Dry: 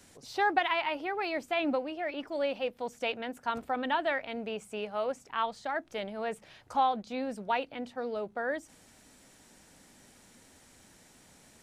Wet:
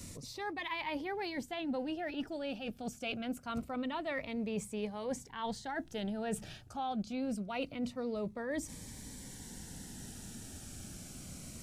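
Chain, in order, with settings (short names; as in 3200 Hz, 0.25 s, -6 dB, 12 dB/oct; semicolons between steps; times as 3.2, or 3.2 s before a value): tone controls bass +12 dB, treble +5 dB; reverse; compressor 6:1, threshold -39 dBFS, peak gain reduction 17 dB; reverse; cascading phaser falling 0.25 Hz; gain +5.5 dB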